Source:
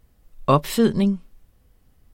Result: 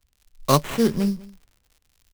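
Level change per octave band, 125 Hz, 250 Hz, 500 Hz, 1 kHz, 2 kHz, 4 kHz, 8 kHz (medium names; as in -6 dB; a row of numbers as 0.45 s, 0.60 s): -1.5 dB, -2.5 dB, -2.0 dB, -1.5 dB, +0.5 dB, +2.0 dB, +4.5 dB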